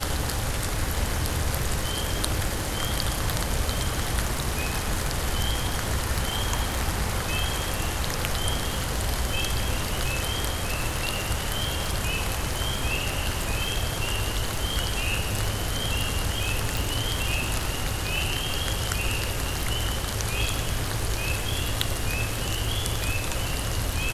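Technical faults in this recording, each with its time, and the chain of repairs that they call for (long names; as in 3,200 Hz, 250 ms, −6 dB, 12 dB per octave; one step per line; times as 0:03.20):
surface crackle 37 per second −30 dBFS
0:16.77: click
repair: click removal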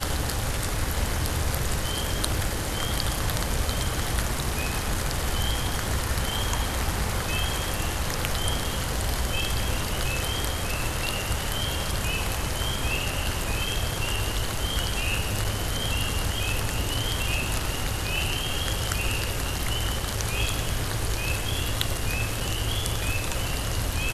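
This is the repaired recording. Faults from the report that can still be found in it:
none of them is left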